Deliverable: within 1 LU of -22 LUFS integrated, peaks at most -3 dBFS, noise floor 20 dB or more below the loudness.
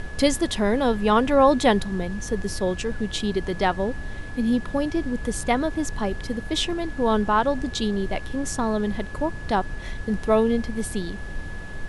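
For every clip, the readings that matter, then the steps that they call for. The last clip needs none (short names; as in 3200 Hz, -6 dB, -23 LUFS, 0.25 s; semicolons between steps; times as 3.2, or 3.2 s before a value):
steady tone 1700 Hz; tone level -40 dBFS; noise floor -35 dBFS; noise floor target -44 dBFS; loudness -24.0 LUFS; peak -5.5 dBFS; loudness target -22.0 LUFS
-> notch 1700 Hz, Q 30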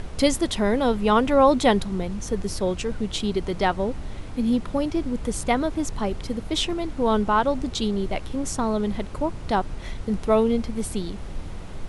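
steady tone none; noise floor -35 dBFS; noise floor target -44 dBFS
-> noise print and reduce 9 dB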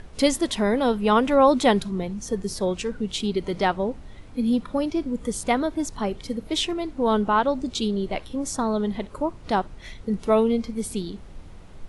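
noise floor -44 dBFS; noise floor target -45 dBFS
-> noise print and reduce 6 dB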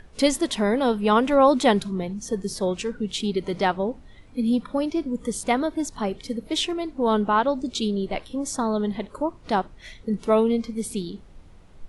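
noise floor -48 dBFS; loudness -24.5 LUFS; peak -6.0 dBFS; loudness target -22.0 LUFS
-> gain +2.5 dB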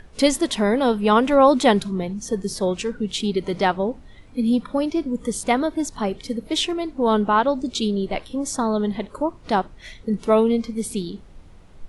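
loudness -22.0 LUFS; peak -3.5 dBFS; noise floor -46 dBFS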